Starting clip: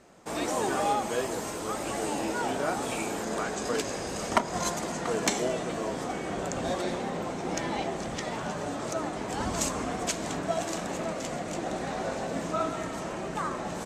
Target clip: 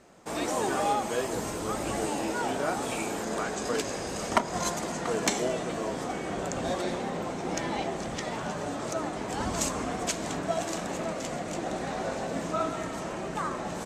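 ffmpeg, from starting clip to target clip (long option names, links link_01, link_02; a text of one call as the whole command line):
ffmpeg -i in.wav -filter_complex "[0:a]asettb=1/sr,asplit=3[link_01][link_02][link_03];[link_01]atrim=end=1.334[link_04];[link_02]atrim=start=1.33:end=2.06,asetpts=PTS-STARTPTS,afade=type=in:duration=0.004:curve=qsin,afade=type=out:start_time=0.726:duration=0.004:curve=qsin,lowshelf=frequency=200:gain=7.5[link_05];[link_03]atrim=start=2.056[link_06];[link_04][link_05]acrossfade=duration=0.004:curve1=hsin:curve2=qsin[link_07];[link_07][link_06]acrossfade=duration=0.004:curve1=qsin:curve2=hsin" out.wav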